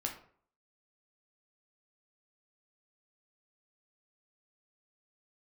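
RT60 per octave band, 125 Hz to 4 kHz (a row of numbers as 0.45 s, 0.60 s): 0.55 s, 0.50 s, 0.55 s, 0.50 s, 0.45 s, 0.30 s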